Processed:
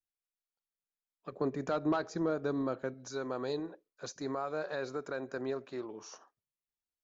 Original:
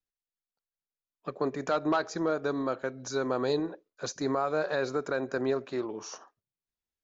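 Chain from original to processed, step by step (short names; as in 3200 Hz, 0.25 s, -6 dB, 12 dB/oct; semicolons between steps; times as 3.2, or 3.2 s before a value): 1.32–2.94 low shelf 410 Hz +9 dB; gain -7.5 dB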